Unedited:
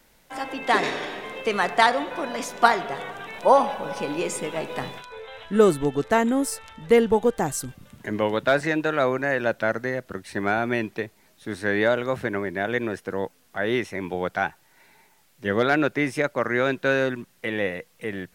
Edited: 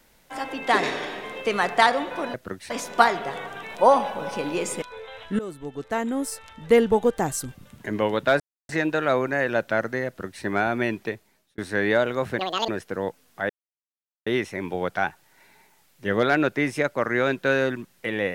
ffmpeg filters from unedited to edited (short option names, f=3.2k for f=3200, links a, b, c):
-filter_complex "[0:a]asplit=10[a][b][c][d][e][f][g][h][i][j];[a]atrim=end=2.342[k];[b]atrim=start=9.978:end=10.342[l];[c]atrim=start=2.338:end=4.462[m];[d]atrim=start=5.018:end=5.59,asetpts=PTS-STARTPTS,afade=t=out:st=0.568:d=0.004:c=hsin:silence=0.0891251[n];[e]atrim=start=5.59:end=8.6,asetpts=PTS-STARTPTS,afade=t=in:d=1.33:silence=0.0891251,afade=t=out:st=3.006:d=0.004:c=hsin,apad=pad_dur=0.29[o];[f]atrim=start=8.6:end=11.49,asetpts=PTS-STARTPTS,afade=t=in:d=0.004:c=hsin,afade=t=out:st=2.39:d=0.5[p];[g]atrim=start=11.49:end=12.304,asetpts=PTS-STARTPTS,afade=t=in:d=0.004:c=hsin[q];[h]atrim=start=12.3:end=12.85,asetpts=PTS-STARTPTS,asetrate=82467,aresample=44100[r];[i]atrim=start=12.846:end=13.66,asetpts=PTS-STARTPTS,afade=t=out:st=0.81:d=0.004:c=hsin,apad=pad_dur=0.77[s];[j]atrim=start=13.66,asetpts=PTS-STARTPTS,afade=t=in:d=0.004:c=hsin[t];[k][l]acrossfade=d=0.004:c1=hsin:c2=hsin[u];[u][m]acrossfade=d=0.004:c1=hsin:c2=hsin[v];[n][o][p][q]concat=n=4:v=0:a=1[w];[v][w]acrossfade=d=0.004:c1=hsin:c2=hsin[x];[x][r]acrossfade=d=0.004:c1=hsin:c2=hsin[y];[s][t]concat=n=2:v=0:a=1[z];[y][z]acrossfade=d=0.004:c1=hsin:c2=hsin"